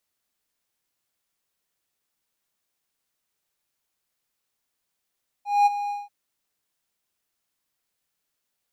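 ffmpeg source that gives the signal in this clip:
-f lavfi -i "aevalsrc='0.282*(1-4*abs(mod(818*t+0.25,1)-0.5))':d=0.636:s=44100,afade=t=in:d=0.211,afade=t=out:st=0.211:d=0.024:silence=0.237,afade=t=out:st=0.45:d=0.186"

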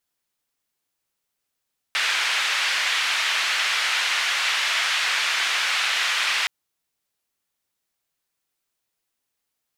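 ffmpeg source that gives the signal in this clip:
-f lavfi -i "anoisesrc=c=white:d=4.52:r=44100:seed=1,highpass=f=1700,lowpass=f=2600,volume=-5.5dB"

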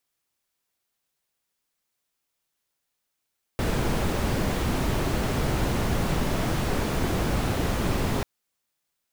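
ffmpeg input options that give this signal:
-f lavfi -i "anoisesrc=c=brown:a=0.279:d=4.64:r=44100:seed=1"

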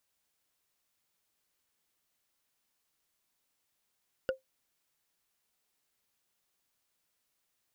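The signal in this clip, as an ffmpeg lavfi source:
-f lavfi -i "aevalsrc='0.0708*pow(10,-3*t/0.14)*sin(2*PI*526*t)+0.0355*pow(10,-3*t/0.041)*sin(2*PI*1450.2*t)+0.0178*pow(10,-3*t/0.018)*sin(2*PI*2842.5*t)+0.00891*pow(10,-3*t/0.01)*sin(2*PI*4698.8*t)+0.00447*pow(10,-3*t/0.006)*sin(2*PI*7016.8*t)':d=0.45:s=44100"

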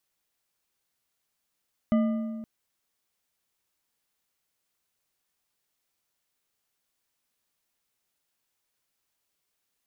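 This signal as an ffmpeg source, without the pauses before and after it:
-f lavfi -i "aevalsrc='0.119*pow(10,-3*t/1.78)*sin(2*PI*224*t)+0.0447*pow(10,-3*t/1.313)*sin(2*PI*617.6*t)+0.0168*pow(10,-3*t/1.073)*sin(2*PI*1210.5*t)+0.00631*pow(10,-3*t/0.923)*sin(2*PI*2001*t)+0.00237*pow(10,-3*t/0.818)*sin(2*PI*2988.2*t)':d=0.52:s=44100"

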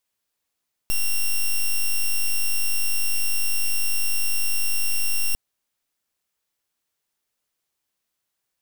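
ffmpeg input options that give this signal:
-f lavfi -i "aevalsrc='0.1*(2*lt(mod(2750*t,1),0.06)-1)':d=4.45:s=44100"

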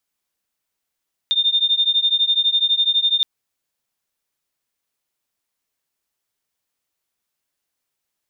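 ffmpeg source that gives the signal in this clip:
-f lavfi -i "aevalsrc='0.126*(sin(2*PI*3620*t)+sin(2*PI*3632*t))':d=1.92:s=44100"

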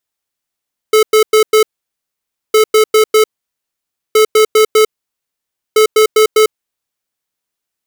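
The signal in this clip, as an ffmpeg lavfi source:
-f lavfi -i "aevalsrc='0.422*(2*lt(mod(433*t,1),0.5)-1)*clip(min(mod(mod(t,1.61),0.2),0.1-mod(mod(t,1.61),0.2))/0.005,0,1)*lt(mod(t,1.61),0.8)':d=6.44:s=44100"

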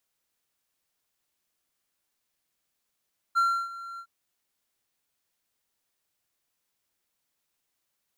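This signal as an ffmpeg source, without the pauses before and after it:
-f lavfi -i "aevalsrc='0.141*(1-4*abs(mod(1370*t+0.25,1)-0.5))':d=0.71:s=44100,afade=t=in:d=0.027,afade=t=out:st=0.027:d=0.307:silence=0.126,afade=t=out:st=0.64:d=0.07"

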